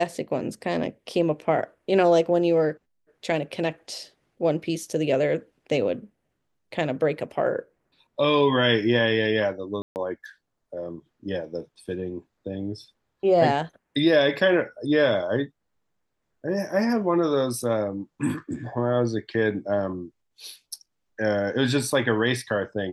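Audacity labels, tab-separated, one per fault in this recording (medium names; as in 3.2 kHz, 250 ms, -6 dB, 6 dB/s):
9.820000	9.960000	dropout 139 ms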